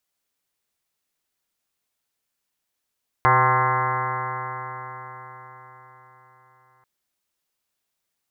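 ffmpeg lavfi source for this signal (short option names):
-f lavfi -i "aevalsrc='0.075*pow(10,-3*t/4.77)*sin(2*PI*125.11*t)+0.00841*pow(10,-3*t/4.77)*sin(2*PI*250.9*t)+0.0355*pow(10,-3*t/4.77)*sin(2*PI*378.03*t)+0.0376*pow(10,-3*t/4.77)*sin(2*PI*507.15*t)+0.0224*pow(10,-3*t/4.77)*sin(2*PI*638.91*t)+0.0794*pow(10,-3*t/4.77)*sin(2*PI*773.92*t)+0.075*pow(10,-3*t/4.77)*sin(2*PI*912.77*t)+0.15*pow(10,-3*t/4.77)*sin(2*PI*1056.03*t)+0.0668*pow(10,-3*t/4.77)*sin(2*PI*1204.22*t)+0.0631*pow(10,-3*t/4.77)*sin(2*PI*1357.85*t)+0.0335*pow(10,-3*t/4.77)*sin(2*PI*1517.37*t)+0.0501*pow(10,-3*t/4.77)*sin(2*PI*1683.21*t)+0.0211*pow(10,-3*t/4.77)*sin(2*PI*1855.78*t)+0.0473*pow(10,-3*t/4.77)*sin(2*PI*2035.42*t)':d=3.59:s=44100"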